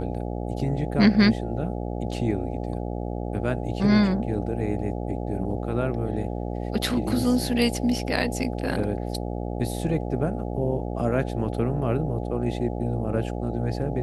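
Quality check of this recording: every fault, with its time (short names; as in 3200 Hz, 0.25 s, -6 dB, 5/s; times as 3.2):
buzz 60 Hz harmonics 14 -30 dBFS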